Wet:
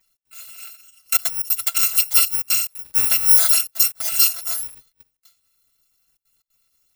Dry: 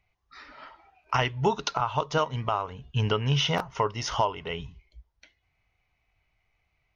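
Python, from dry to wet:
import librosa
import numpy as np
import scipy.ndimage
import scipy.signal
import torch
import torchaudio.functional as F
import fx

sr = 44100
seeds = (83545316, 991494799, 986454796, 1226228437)

y = fx.bit_reversed(x, sr, seeds[0], block=256)
y = fx.tilt_eq(y, sr, slope=2.0)
y = y + 0.91 * np.pad(y, (int(6.0 * sr / 1000.0), 0))[:len(y)]
y = fx.step_gate(y, sr, bpm=180, pattern='xx.xxxxxxxxxxx.', floor_db=-24.0, edge_ms=4.5)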